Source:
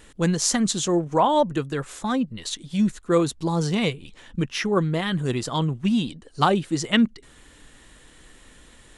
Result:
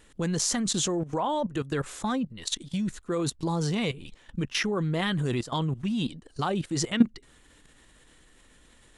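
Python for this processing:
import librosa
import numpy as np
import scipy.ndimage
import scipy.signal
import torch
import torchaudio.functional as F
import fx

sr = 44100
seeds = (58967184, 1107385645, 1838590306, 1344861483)

y = fx.level_steps(x, sr, step_db=15)
y = y * librosa.db_to_amplitude(3.0)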